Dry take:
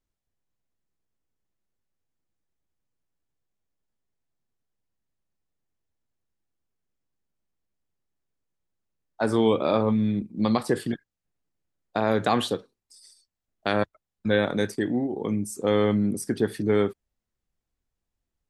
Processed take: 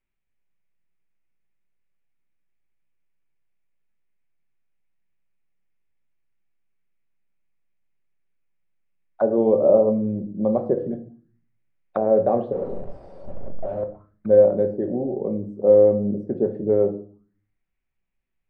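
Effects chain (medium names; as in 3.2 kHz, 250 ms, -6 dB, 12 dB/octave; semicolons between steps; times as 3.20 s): 12.52–13.83 s: one-bit comparator; simulated room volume 400 m³, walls furnished, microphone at 1.1 m; touch-sensitive low-pass 570–2400 Hz down, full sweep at -27 dBFS; trim -3.5 dB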